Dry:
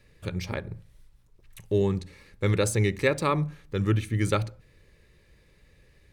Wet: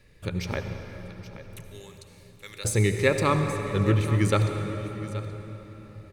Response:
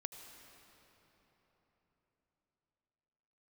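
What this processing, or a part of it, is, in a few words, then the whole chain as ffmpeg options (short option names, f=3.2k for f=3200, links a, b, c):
cathedral: -filter_complex "[0:a]asettb=1/sr,asplit=3[a][b][c];[a]atrim=end=1.694[d];[b]atrim=start=1.69:end=2.65,asetpts=PTS-STARTPTS,afade=t=in:d=0.004:c=qsin,afade=t=out:st=0.956:d=0.004:c=qsin,aderivative[e];[c]atrim=start=2.646[f];[d][e]acrossfade=d=0.004:c1=hsin:c2=qsin[g];[g][f]acrossfade=d=0.004:c1=qsin:c2=hsin[h];[1:a]atrim=start_sample=2205[i];[h][i]afir=irnorm=-1:irlink=0,aecho=1:1:826:0.188,volume=5dB"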